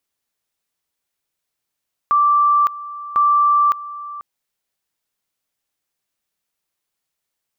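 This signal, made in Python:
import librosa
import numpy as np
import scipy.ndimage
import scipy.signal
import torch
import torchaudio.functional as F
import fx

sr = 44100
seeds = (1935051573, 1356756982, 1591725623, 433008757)

y = fx.two_level_tone(sr, hz=1170.0, level_db=-11.0, drop_db=17.0, high_s=0.56, low_s=0.49, rounds=2)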